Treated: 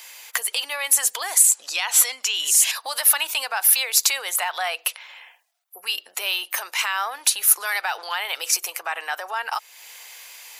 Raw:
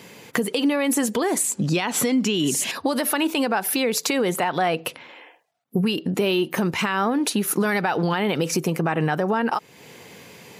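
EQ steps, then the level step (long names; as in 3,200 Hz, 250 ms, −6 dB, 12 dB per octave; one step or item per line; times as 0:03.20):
high-pass filter 680 Hz 24 dB per octave
spectral tilt +3.5 dB per octave
−2.0 dB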